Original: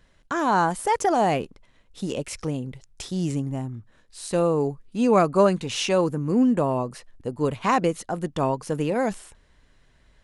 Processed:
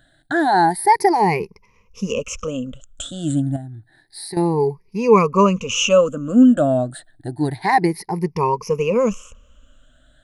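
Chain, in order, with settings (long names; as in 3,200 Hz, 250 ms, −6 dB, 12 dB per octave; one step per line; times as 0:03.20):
rippled gain that drifts along the octave scale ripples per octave 0.82, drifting +0.29 Hz, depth 24 dB
0:03.56–0:04.37: downward compressor 5 to 1, threshold −29 dBFS, peak gain reduction 13 dB
level −1 dB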